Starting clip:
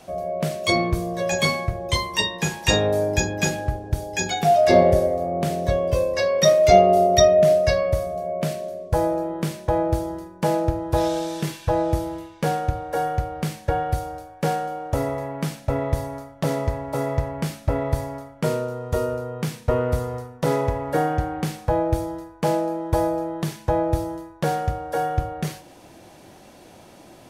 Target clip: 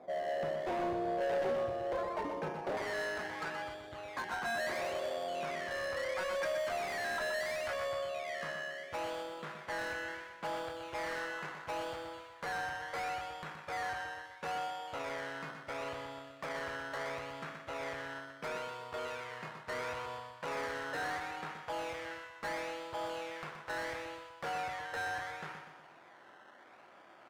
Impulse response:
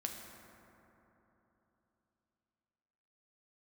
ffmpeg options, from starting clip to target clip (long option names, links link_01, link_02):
-af "alimiter=limit=-11.5dB:level=0:latency=1:release=178,acrusher=samples=15:mix=1:aa=0.000001:lfo=1:lforange=9:lforate=0.73,asoftclip=type=tanh:threshold=-17dB,asetnsamples=nb_out_samples=441:pad=0,asendcmd='2.77 bandpass f 1400',bandpass=frequency=560:width_type=q:width=1.4:csg=0,asoftclip=type=hard:threshold=-29.5dB,aecho=1:1:123|246|369|492|615|738:0.447|0.214|0.103|0.0494|0.0237|0.0114,volume=-3.5dB"